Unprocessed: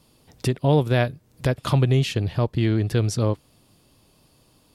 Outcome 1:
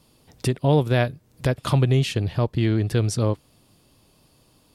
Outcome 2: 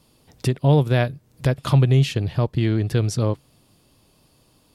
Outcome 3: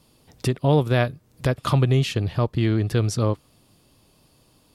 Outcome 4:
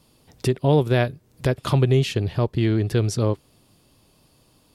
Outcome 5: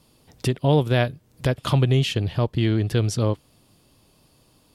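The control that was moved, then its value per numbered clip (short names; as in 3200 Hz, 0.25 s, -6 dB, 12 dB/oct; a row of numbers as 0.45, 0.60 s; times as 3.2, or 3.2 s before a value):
dynamic EQ, frequency: 8800, 140, 1200, 390, 3100 Hz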